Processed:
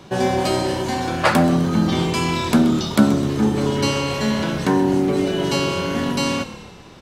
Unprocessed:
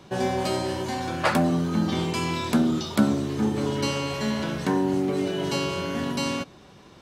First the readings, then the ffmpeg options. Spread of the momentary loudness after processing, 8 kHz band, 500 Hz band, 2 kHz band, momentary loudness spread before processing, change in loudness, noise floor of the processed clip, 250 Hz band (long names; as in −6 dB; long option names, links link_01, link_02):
5 LU, +6.0 dB, +6.0 dB, +6.0 dB, 5 LU, +6.0 dB, −42 dBFS, +6.0 dB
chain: -filter_complex "[0:a]asplit=7[link_01][link_02][link_03][link_04][link_05][link_06][link_07];[link_02]adelay=128,afreqshift=-35,volume=-15dB[link_08];[link_03]adelay=256,afreqshift=-70,volume=-19.9dB[link_09];[link_04]adelay=384,afreqshift=-105,volume=-24.8dB[link_10];[link_05]adelay=512,afreqshift=-140,volume=-29.6dB[link_11];[link_06]adelay=640,afreqshift=-175,volume=-34.5dB[link_12];[link_07]adelay=768,afreqshift=-210,volume=-39.4dB[link_13];[link_01][link_08][link_09][link_10][link_11][link_12][link_13]amix=inputs=7:normalize=0,volume=6dB"